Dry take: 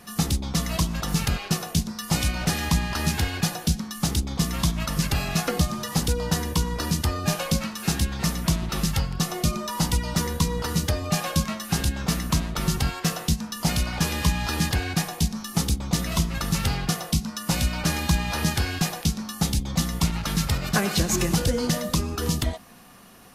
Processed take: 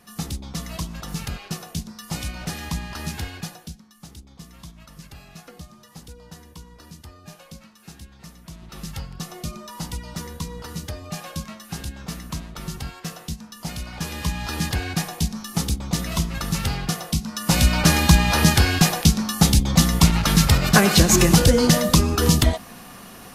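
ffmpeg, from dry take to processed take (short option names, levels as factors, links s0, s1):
-af "volume=10.6,afade=t=out:st=3.25:d=0.55:silence=0.237137,afade=t=in:st=8.49:d=0.51:silence=0.298538,afade=t=in:st=13.8:d=1.03:silence=0.398107,afade=t=in:st=17.25:d=0.47:silence=0.398107"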